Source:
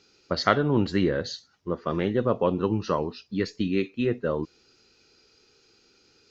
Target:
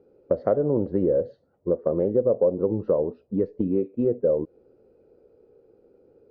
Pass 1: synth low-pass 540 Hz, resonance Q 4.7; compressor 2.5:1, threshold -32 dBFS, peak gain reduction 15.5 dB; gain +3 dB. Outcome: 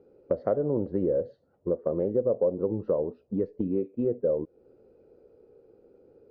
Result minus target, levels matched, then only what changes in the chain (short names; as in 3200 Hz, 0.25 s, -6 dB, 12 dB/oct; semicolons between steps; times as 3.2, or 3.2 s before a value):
compressor: peak gain reduction +4 dB
change: compressor 2.5:1, threshold -25 dBFS, peak gain reduction 11.5 dB